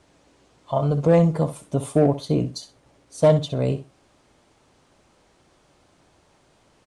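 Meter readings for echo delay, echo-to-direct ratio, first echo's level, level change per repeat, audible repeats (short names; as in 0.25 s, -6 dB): 63 ms, -12.5 dB, -12.5 dB, -16.0 dB, 2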